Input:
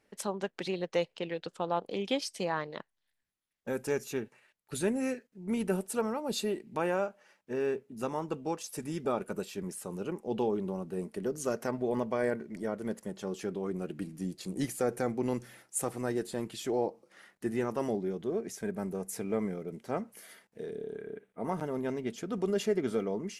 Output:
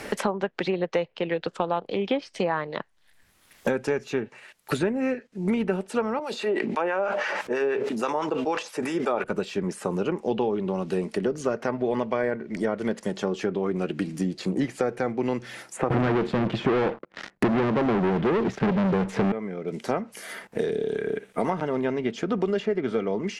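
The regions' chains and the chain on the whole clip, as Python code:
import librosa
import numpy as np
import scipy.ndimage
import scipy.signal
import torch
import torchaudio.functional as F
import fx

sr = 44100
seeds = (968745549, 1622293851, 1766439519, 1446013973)

y = fx.chain(x, sr, fx.highpass(hz=390.0, slope=12),
    fx.harmonic_tremolo(hz=6.1, depth_pct=70, crossover_hz=1000.0),
    fx.sustainer(db_per_s=34.0), at=(6.19, 9.24))
y = fx.chain(y, sr, fx.riaa(side='playback'),
    fx.leveller(passes=5), at=(15.9, 19.32))
y = fx.env_lowpass_down(y, sr, base_hz=2400.0, full_db=-30.0)
y = fx.low_shelf(y, sr, hz=410.0, db=-4.0)
y = fx.band_squash(y, sr, depth_pct=100)
y = F.gain(torch.from_numpy(y), 6.5).numpy()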